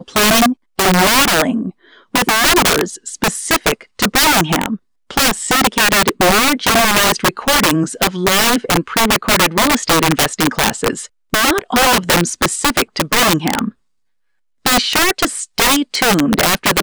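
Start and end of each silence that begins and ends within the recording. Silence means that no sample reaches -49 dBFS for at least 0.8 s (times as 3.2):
13.73–14.65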